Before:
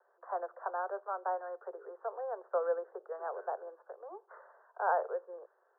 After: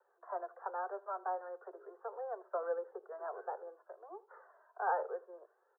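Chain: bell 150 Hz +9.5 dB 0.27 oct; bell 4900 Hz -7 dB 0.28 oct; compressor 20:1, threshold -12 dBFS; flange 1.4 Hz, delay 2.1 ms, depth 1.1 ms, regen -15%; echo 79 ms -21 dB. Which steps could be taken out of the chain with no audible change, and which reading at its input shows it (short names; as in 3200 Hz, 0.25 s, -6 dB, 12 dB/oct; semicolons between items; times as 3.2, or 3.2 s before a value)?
bell 150 Hz: input band starts at 320 Hz; bell 4900 Hz: input band ends at 1600 Hz; compressor, threshold -12 dBFS: input peak -19.0 dBFS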